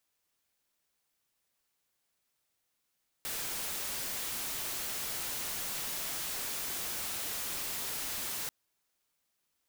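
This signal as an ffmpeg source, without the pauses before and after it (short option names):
-f lavfi -i "anoisesrc=c=white:a=0.0245:d=5.24:r=44100:seed=1"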